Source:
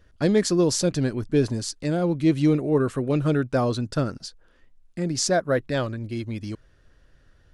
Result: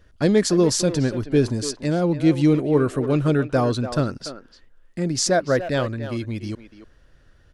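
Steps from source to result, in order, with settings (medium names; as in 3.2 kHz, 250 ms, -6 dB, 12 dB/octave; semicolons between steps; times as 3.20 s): speakerphone echo 290 ms, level -10 dB; trim +2.5 dB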